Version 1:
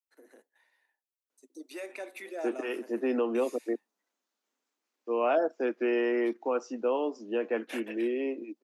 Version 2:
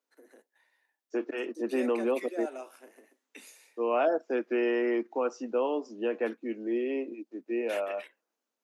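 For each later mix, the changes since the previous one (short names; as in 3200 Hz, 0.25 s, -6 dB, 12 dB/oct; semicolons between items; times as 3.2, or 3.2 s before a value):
second voice: entry -1.30 s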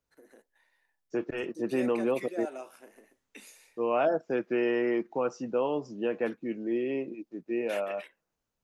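master: remove steep high-pass 230 Hz 48 dB/oct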